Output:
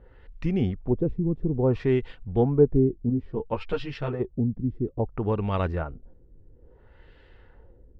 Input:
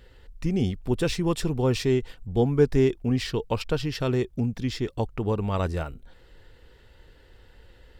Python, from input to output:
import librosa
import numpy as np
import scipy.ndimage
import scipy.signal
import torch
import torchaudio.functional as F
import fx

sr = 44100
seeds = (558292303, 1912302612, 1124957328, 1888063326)

y = fx.filter_lfo_lowpass(x, sr, shape='sine', hz=0.59, low_hz=260.0, high_hz=2900.0, q=1.1)
y = fx.ensemble(y, sr, at=(3.09, 4.19), fade=0.02)